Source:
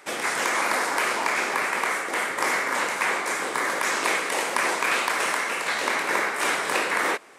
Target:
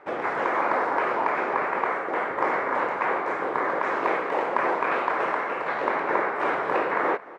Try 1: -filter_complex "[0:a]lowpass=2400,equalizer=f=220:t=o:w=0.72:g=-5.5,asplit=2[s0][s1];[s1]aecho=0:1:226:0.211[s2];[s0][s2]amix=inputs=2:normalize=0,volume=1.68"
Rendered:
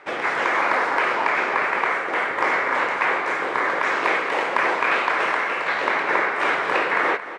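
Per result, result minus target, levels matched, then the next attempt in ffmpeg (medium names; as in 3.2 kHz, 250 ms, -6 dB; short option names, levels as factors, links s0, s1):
echo-to-direct +7 dB; 2 kHz band +3.5 dB
-filter_complex "[0:a]lowpass=2400,equalizer=f=220:t=o:w=0.72:g=-5.5,asplit=2[s0][s1];[s1]aecho=0:1:226:0.0944[s2];[s0][s2]amix=inputs=2:normalize=0,volume=1.68"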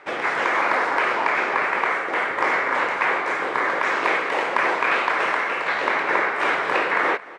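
2 kHz band +3.5 dB
-filter_complex "[0:a]lowpass=1100,equalizer=f=220:t=o:w=0.72:g=-5.5,asplit=2[s0][s1];[s1]aecho=0:1:226:0.0944[s2];[s0][s2]amix=inputs=2:normalize=0,volume=1.68"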